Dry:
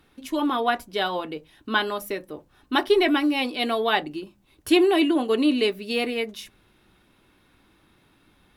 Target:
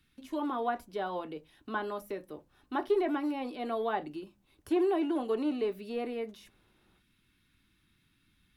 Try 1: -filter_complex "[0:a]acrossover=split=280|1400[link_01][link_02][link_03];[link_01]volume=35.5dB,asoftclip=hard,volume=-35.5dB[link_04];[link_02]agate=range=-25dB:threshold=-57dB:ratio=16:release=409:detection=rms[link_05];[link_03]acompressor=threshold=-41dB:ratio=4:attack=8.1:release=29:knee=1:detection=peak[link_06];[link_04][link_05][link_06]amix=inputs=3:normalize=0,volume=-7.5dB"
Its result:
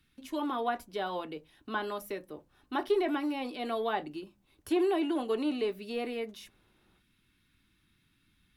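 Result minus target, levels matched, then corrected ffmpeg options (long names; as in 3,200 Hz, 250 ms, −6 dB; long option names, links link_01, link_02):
downward compressor: peak gain reduction −7 dB
-filter_complex "[0:a]acrossover=split=280|1400[link_01][link_02][link_03];[link_01]volume=35.5dB,asoftclip=hard,volume=-35.5dB[link_04];[link_02]agate=range=-25dB:threshold=-57dB:ratio=16:release=409:detection=rms[link_05];[link_03]acompressor=threshold=-50.5dB:ratio=4:attack=8.1:release=29:knee=1:detection=peak[link_06];[link_04][link_05][link_06]amix=inputs=3:normalize=0,volume=-7.5dB"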